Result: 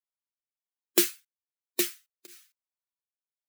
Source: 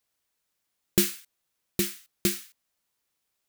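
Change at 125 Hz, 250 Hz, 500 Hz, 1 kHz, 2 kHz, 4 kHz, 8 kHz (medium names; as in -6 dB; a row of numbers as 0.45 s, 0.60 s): under -20 dB, -4.0 dB, 0.0 dB, +1.0 dB, -0.5 dB, -0.5 dB, -0.5 dB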